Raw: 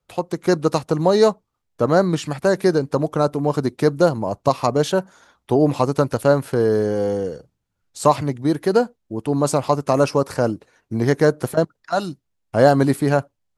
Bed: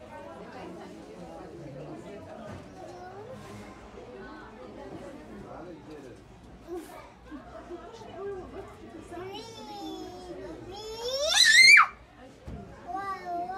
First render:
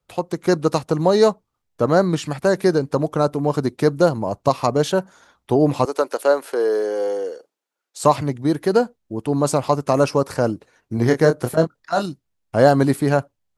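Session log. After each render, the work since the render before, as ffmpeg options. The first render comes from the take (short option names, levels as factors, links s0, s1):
-filter_complex "[0:a]asettb=1/sr,asplit=3[s0][s1][s2];[s0]atrim=end=5.854[s3];[s1]atrim=start=5.85:end=8.04,asetpts=PTS-STARTPTS,afade=t=in:d=0.004:c=qsin,afade=t=out:st=2.186:d=0.004:c=qsin,highpass=f=360:w=0.5412,highpass=f=360:w=1.3066[s4];[s2]atrim=start=8.036[s5];[s3][s4]acrossfade=d=0.004:c1=hsin:c2=qsin[s6];[s6][s5]acrossfade=d=0.004:c1=qsin:c2=hsin,asettb=1/sr,asplit=3[s7][s8][s9];[s7]atrim=end=10.954[s10];[s8]atrim=start=10.95:end=12.06,asetpts=PTS-STARTPTS,afade=t=in:d=0.004:c=qsin,afade=t=out:st=1.106:d=0.004:c=qsin,asplit=2[s11][s12];[s12]adelay=25,volume=0.447[s13];[s11][s13]amix=inputs=2:normalize=0,atrim=end_sample=48951[s14];[s9]atrim=start=12.056[s15];[s10][s14]acrossfade=d=0.004:c1=hsin:c2=qsin[s16];[s16][s15]acrossfade=d=0.004:c1=qsin:c2=hsin"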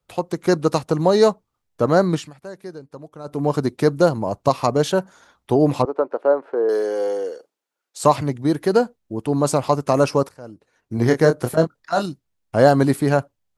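-filter_complex "[0:a]asettb=1/sr,asplit=3[s0][s1][s2];[s0]atrim=end=5.824[s3];[s1]atrim=start=5.82:end=6.69,asetpts=PTS-STARTPTS,afade=t=in:d=0.004:c=qsin,afade=t=out:st=0.866:d=0.004:c=qsin,lowpass=1100[s4];[s2]atrim=start=6.686[s5];[s3][s4]acrossfade=d=0.004:c1=hsin:c2=qsin[s6];[s6][s5]acrossfade=d=0.004:c1=qsin:c2=hsin,asplit=4[s7][s8][s9][s10];[s7]atrim=end=2.31,asetpts=PTS-STARTPTS,afade=t=out:st=2.14:d=0.17:silence=0.125893[s11];[s8]atrim=start=2.31:end=3.24,asetpts=PTS-STARTPTS,volume=0.126[s12];[s9]atrim=start=3.24:end=10.29,asetpts=PTS-STARTPTS,afade=t=in:d=0.17:silence=0.125893,afade=t=out:st=7.046:d=0.004:c=hsin:silence=0.0794328[s13];[s10]atrim=start=10.29,asetpts=PTS-STARTPTS,afade=t=in:d=0.72:c=qua:silence=0.0794328[s14];[s11][s12][s13][s14]concat=n=4:v=0:a=1"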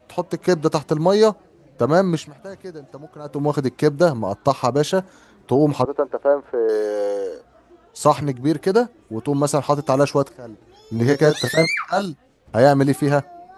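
-filter_complex "[1:a]volume=0.398[s0];[0:a][s0]amix=inputs=2:normalize=0"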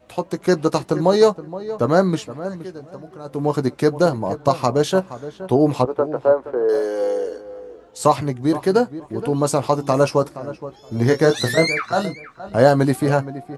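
-filter_complex "[0:a]asplit=2[s0][s1];[s1]adelay=16,volume=0.266[s2];[s0][s2]amix=inputs=2:normalize=0,asplit=2[s3][s4];[s4]adelay=471,lowpass=f=1900:p=1,volume=0.2,asplit=2[s5][s6];[s6]adelay=471,lowpass=f=1900:p=1,volume=0.18[s7];[s3][s5][s7]amix=inputs=3:normalize=0"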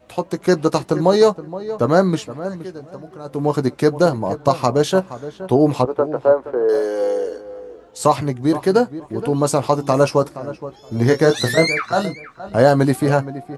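-af "volume=1.19,alimiter=limit=0.794:level=0:latency=1"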